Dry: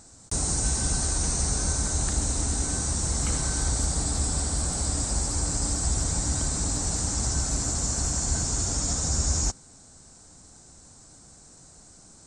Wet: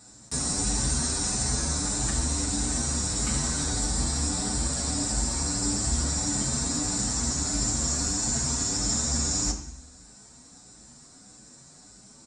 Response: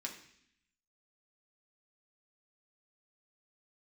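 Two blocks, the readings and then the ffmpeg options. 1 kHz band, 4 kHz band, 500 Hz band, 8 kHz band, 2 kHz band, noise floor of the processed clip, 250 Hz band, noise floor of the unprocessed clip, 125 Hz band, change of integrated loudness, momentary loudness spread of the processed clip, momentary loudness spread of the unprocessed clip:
0.0 dB, +2.5 dB, -0.5 dB, 0.0 dB, +1.0 dB, -52 dBFS, +3.0 dB, -52 dBFS, -2.5 dB, 0.0 dB, 2 LU, 2 LU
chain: -filter_complex "[1:a]atrim=start_sample=2205[s0];[0:a][s0]afir=irnorm=-1:irlink=0,asplit=2[s1][s2];[s2]adelay=7.7,afreqshift=1.6[s3];[s1][s3]amix=inputs=2:normalize=1,volume=1.88"

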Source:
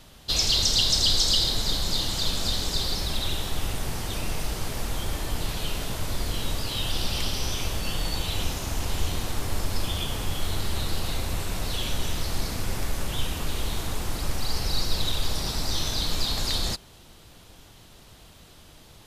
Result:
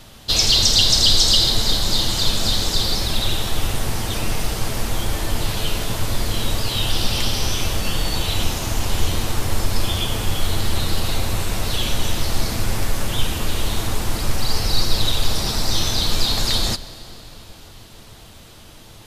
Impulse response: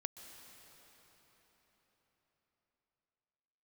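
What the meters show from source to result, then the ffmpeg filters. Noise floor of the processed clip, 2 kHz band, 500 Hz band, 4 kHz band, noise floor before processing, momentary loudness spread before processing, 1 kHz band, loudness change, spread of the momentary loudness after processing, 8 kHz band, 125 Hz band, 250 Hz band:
-43 dBFS, +7.0 dB, +7.0 dB, +7.0 dB, -51 dBFS, 11 LU, +7.0 dB, +7.0 dB, 11 LU, +7.0 dB, +7.0 dB, +7.0 dB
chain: -filter_complex "[0:a]asplit=2[s0][s1];[1:a]atrim=start_sample=2205,adelay=9[s2];[s1][s2]afir=irnorm=-1:irlink=0,volume=0.473[s3];[s0][s3]amix=inputs=2:normalize=0,volume=2.11"

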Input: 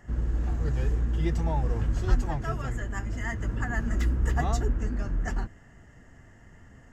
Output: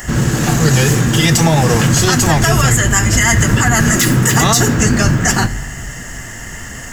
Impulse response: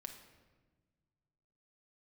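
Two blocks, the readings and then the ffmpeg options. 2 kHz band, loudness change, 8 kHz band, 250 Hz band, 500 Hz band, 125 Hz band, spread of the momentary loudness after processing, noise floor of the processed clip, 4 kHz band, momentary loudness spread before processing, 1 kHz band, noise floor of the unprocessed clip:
+22.5 dB, +17.5 dB, no reading, +20.5 dB, +18.5 dB, +17.0 dB, 16 LU, -29 dBFS, +31.0 dB, 6 LU, +19.0 dB, -53 dBFS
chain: -filter_complex "[0:a]crystalizer=i=9.5:c=0,asplit=2[s0][s1];[1:a]atrim=start_sample=2205[s2];[s1][s2]afir=irnorm=-1:irlink=0,volume=0.562[s3];[s0][s3]amix=inputs=2:normalize=0,afftfilt=real='re*lt(hypot(re,im),0.398)':imag='im*lt(hypot(re,im),0.398)':win_size=1024:overlap=0.75,adynamicequalizer=threshold=0.00355:dfrequency=130:dqfactor=1.6:tfrequency=130:tqfactor=1.6:attack=5:release=100:ratio=0.375:range=4:mode=boostabove:tftype=bell,alimiter=level_in=8.41:limit=0.891:release=50:level=0:latency=1,volume=0.891"

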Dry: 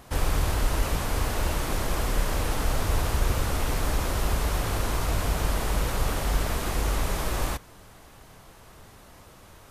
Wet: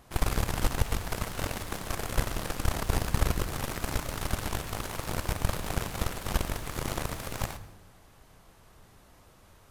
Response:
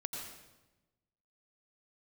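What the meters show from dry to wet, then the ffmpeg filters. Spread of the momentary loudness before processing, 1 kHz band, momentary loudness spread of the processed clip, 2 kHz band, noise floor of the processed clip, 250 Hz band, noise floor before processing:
2 LU, -4.5 dB, 5 LU, -4.0 dB, -57 dBFS, -3.0 dB, -51 dBFS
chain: -filter_complex "[0:a]acontrast=89,aeval=exprs='0.501*(cos(1*acos(clip(val(0)/0.501,-1,1)))-cos(1*PI/2))+0.178*(cos(3*acos(clip(val(0)/0.501,-1,1)))-cos(3*PI/2))+0.0282*(cos(4*acos(clip(val(0)/0.501,-1,1)))-cos(4*PI/2))+0.02*(cos(7*acos(clip(val(0)/0.501,-1,1)))-cos(7*PI/2))':c=same,asplit=2[s0][s1];[1:a]atrim=start_sample=2205,asetrate=48510,aresample=44100,lowshelf=f=170:g=9[s2];[s1][s2]afir=irnorm=-1:irlink=0,volume=0.316[s3];[s0][s3]amix=inputs=2:normalize=0,volume=0.422"

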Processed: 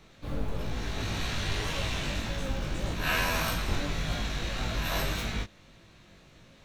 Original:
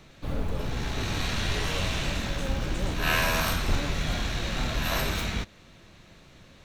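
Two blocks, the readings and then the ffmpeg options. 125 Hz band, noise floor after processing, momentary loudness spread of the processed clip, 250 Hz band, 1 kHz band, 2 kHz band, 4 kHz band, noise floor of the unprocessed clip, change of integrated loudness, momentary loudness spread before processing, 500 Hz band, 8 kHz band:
-3.0 dB, -57 dBFS, 7 LU, -3.0 dB, -3.0 dB, -3.0 dB, -3.0 dB, -53 dBFS, -3.0 dB, 8 LU, -3.0 dB, -3.0 dB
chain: -af "flanger=delay=18:depth=2.7:speed=1.7"

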